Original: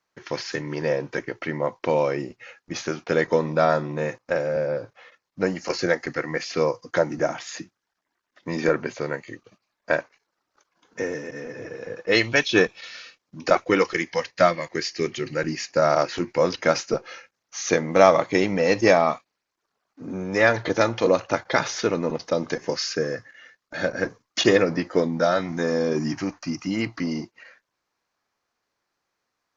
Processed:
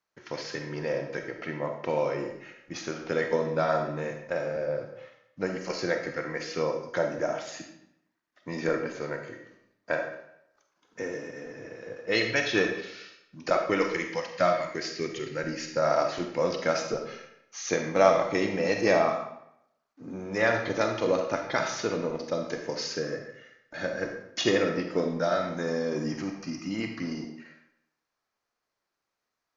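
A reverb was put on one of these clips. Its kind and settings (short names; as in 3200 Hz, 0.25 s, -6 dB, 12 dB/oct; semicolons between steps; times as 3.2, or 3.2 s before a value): digital reverb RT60 0.77 s, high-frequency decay 0.85×, pre-delay 5 ms, DRR 3.5 dB; gain -7 dB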